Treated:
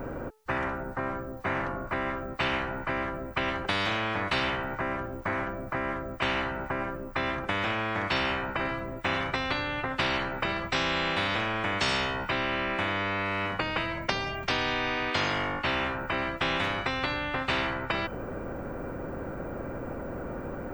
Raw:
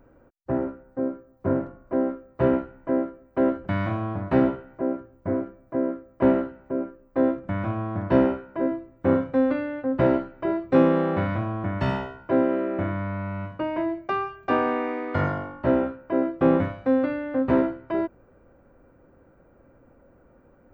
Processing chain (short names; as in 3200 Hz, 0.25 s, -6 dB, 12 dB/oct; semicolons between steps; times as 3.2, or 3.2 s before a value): de-hum 433.8 Hz, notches 29; spectral compressor 10:1; gain -6 dB